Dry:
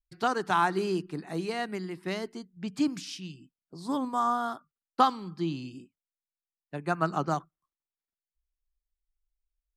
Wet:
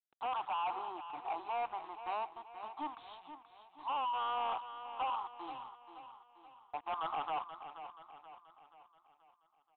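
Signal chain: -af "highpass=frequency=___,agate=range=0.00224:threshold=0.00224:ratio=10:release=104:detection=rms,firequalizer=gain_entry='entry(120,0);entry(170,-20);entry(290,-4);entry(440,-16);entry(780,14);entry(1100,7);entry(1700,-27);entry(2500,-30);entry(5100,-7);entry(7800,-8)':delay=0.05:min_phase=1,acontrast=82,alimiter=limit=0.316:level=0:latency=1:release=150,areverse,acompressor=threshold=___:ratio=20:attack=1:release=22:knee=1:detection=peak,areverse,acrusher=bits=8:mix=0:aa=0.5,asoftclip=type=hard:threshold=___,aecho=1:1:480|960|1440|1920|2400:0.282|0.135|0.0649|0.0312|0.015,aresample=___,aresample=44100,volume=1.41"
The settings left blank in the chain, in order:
1300, 0.0251, 0.0158, 8000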